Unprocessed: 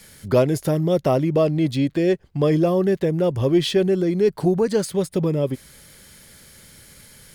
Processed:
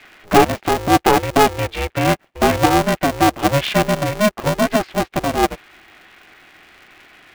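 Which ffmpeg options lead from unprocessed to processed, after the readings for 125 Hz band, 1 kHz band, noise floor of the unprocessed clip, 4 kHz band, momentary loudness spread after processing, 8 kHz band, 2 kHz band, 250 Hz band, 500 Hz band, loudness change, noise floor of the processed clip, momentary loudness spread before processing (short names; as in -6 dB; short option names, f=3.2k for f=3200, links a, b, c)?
-0.5 dB, +16.0 dB, -49 dBFS, +8.0 dB, 7 LU, +9.5 dB, +14.5 dB, +1.0 dB, +0.5 dB, +3.0 dB, -55 dBFS, 4 LU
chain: -af "highpass=430,equalizer=f=560:t=q:w=4:g=5,equalizer=f=1.7k:t=q:w=4:g=4,equalizer=f=2.5k:t=q:w=4:g=7,lowpass=f=3k:w=0.5412,lowpass=f=3k:w=1.3066,aeval=exprs='val(0)*sgn(sin(2*PI*210*n/s))':c=same,volume=5dB"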